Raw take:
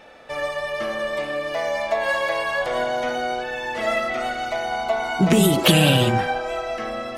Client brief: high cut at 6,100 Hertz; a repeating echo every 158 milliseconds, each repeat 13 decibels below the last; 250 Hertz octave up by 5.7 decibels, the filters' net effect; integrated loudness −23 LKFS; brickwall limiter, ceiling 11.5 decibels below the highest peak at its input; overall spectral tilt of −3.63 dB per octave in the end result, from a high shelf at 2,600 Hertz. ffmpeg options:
ffmpeg -i in.wav -af "lowpass=6100,equalizer=frequency=250:width_type=o:gain=8,highshelf=frequency=2600:gain=4.5,alimiter=limit=-10.5dB:level=0:latency=1,aecho=1:1:158|316|474:0.224|0.0493|0.0108,volume=-1dB" out.wav

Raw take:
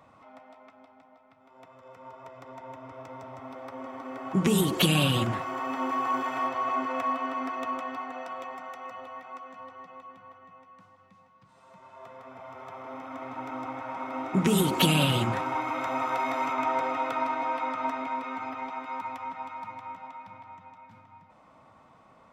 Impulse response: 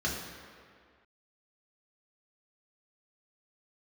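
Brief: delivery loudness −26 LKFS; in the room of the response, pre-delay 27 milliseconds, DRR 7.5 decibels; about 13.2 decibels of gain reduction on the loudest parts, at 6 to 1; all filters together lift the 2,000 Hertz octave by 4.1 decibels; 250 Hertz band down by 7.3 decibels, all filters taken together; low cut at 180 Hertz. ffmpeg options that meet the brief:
-filter_complex "[0:a]highpass=180,equalizer=frequency=250:width_type=o:gain=-8,equalizer=frequency=2000:width_type=o:gain=5.5,acompressor=threshold=-34dB:ratio=6,asplit=2[link_01][link_02];[1:a]atrim=start_sample=2205,adelay=27[link_03];[link_02][link_03]afir=irnorm=-1:irlink=0,volume=-15dB[link_04];[link_01][link_04]amix=inputs=2:normalize=0,volume=11.5dB"

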